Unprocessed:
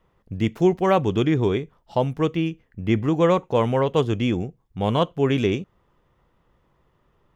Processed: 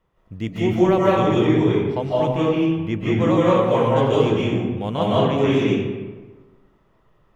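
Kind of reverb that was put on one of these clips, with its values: digital reverb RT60 1.3 s, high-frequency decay 0.6×, pre-delay 0.12 s, DRR -8 dB; gain -5 dB

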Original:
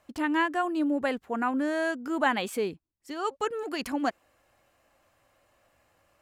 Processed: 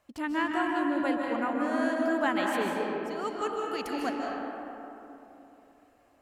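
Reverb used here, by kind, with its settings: digital reverb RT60 3.3 s, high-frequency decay 0.4×, pre-delay 0.11 s, DRR -1.5 dB; gain -4.5 dB

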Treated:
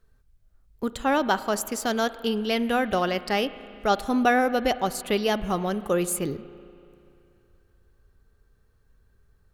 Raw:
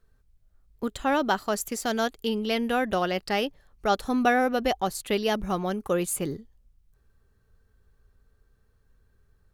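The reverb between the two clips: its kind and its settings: spring tank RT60 2.7 s, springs 34/48 ms, chirp 30 ms, DRR 14.5 dB; gain +1.5 dB

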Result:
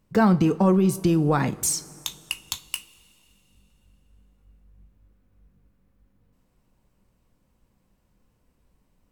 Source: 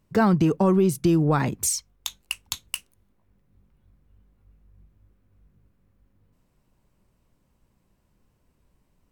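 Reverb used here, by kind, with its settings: two-slope reverb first 0.25 s, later 3 s, from -20 dB, DRR 10.5 dB

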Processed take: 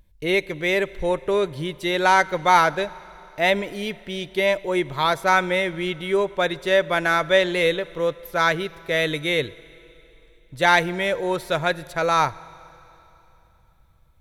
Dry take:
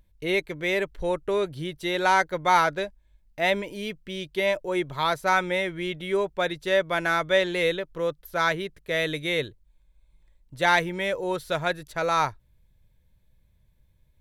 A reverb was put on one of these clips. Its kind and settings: Schroeder reverb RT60 3.2 s, combs from 33 ms, DRR 19.5 dB; gain +4 dB

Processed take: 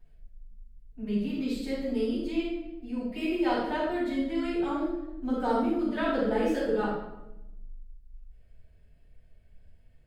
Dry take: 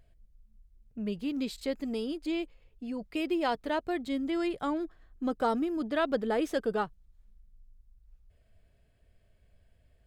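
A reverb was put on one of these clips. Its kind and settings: shoebox room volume 320 m³, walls mixed, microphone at 7.3 m; gain -15 dB

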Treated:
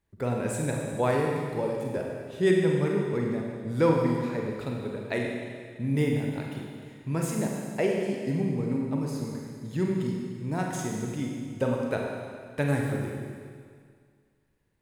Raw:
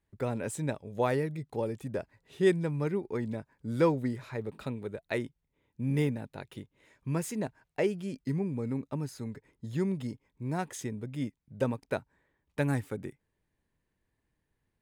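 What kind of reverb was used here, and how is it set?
Schroeder reverb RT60 2 s, combs from 33 ms, DRR -0.5 dB; gain +1.5 dB

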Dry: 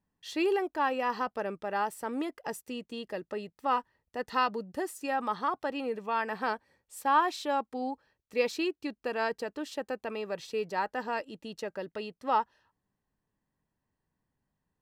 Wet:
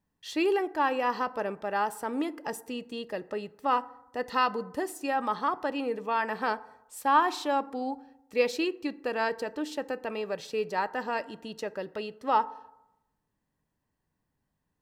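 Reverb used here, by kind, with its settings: FDN reverb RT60 0.86 s, low-frequency decay 1×, high-frequency decay 0.4×, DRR 15 dB; gain +2 dB

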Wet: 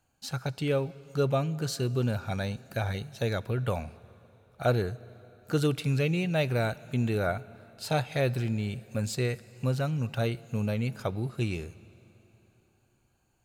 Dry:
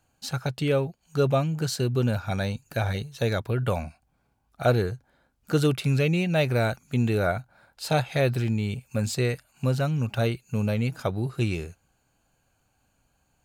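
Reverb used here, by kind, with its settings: plate-style reverb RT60 3.6 s, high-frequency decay 0.95×, DRR 19 dB; gain -4 dB

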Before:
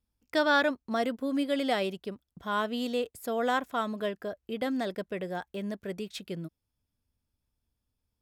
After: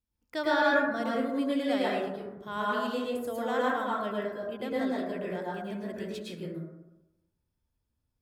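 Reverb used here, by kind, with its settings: plate-style reverb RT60 1 s, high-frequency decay 0.3×, pre-delay 95 ms, DRR -6 dB; gain -7 dB

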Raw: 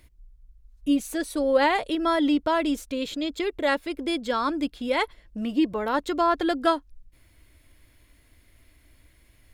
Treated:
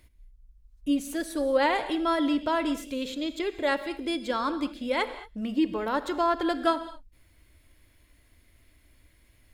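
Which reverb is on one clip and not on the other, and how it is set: non-linear reverb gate 0.25 s flat, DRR 10.5 dB; gain -3 dB

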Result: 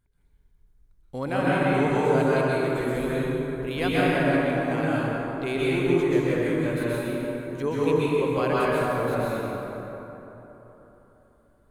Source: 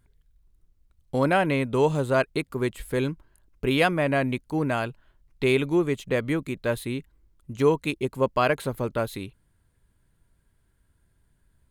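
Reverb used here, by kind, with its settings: plate-style reverb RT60 3.7 s, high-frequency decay 0.45×, pre-delay 0.11 s, DRR -8.5 dB; gain -8.5 dB

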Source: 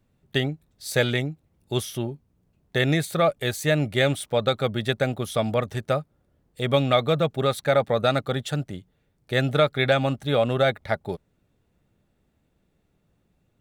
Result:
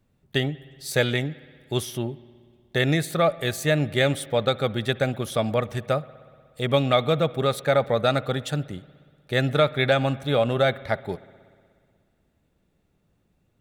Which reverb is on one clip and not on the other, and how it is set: spring tank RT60 2 s, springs 60 ms, chirp 45 ms, DRR 18.5 dB

